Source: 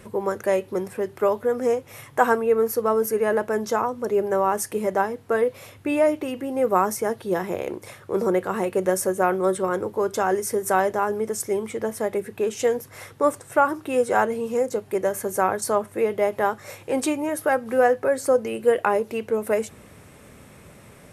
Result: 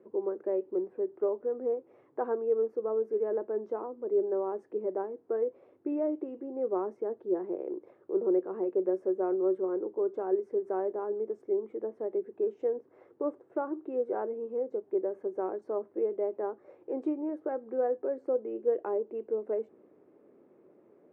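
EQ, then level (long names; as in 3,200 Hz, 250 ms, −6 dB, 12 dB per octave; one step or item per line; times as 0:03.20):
four-pole ladder band-pass 390 Hz, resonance 60%
0.0 dB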